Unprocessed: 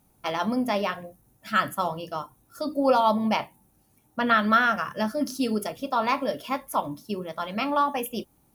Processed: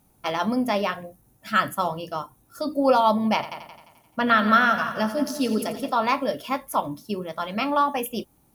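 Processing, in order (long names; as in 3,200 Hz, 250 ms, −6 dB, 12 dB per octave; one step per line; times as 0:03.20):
0:03.34–0:05.92: echo machine with several playback heads 87 ms, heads first and second, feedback 46%, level −13 dB
level +2 dB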